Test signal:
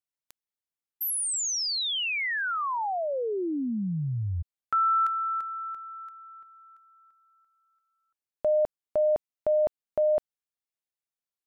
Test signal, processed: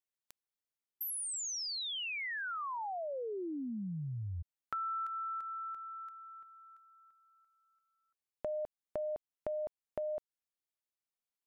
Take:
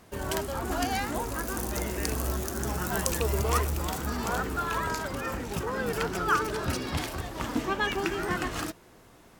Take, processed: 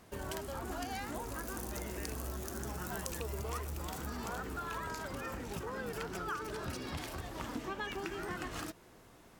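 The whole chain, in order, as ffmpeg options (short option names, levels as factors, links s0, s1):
-af "acompressor=threshold=0.0158:ratio=3:attack=28:release=151:knee=6:detection=rms,volume=0.631"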